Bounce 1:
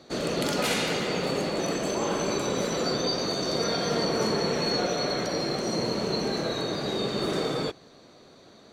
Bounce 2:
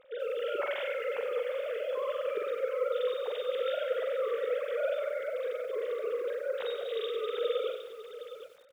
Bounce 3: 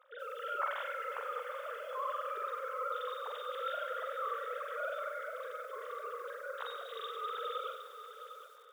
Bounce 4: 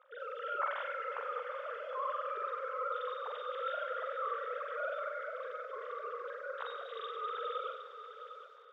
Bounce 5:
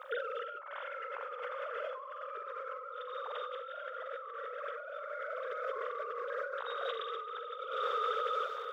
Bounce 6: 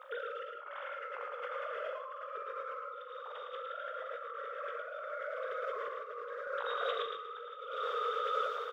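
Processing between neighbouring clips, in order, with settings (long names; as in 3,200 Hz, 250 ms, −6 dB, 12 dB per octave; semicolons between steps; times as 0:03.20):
three sine waves on the formant tracks; on a send: multi-tap delay 44/761 ms −5/−11 dB; on the sum: feedback echo at a low word length 94 ms, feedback 55%, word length 8 bits, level −10 dB; level −7 dB
high-pass with resonance 1,200 Hz, resonance Q 2.8; parametric band 2,400 Hz −14.5 dB 1.3 octaves; feedback delay with all-pass diffusion 536 ms, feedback 53%, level −15 dB; level +2 dB
high-frequency loss of the air 190 metres; level +1.5 dB
compressor whose output falls as the input rises −49 dBFS, ratio −1; level +8.5 dB
sample-and-hold tremolo 1.7 Hz; double-tracking delay 19 ms −11 dB; single-tap delay 110 ms −4.5 dB; level +1 dB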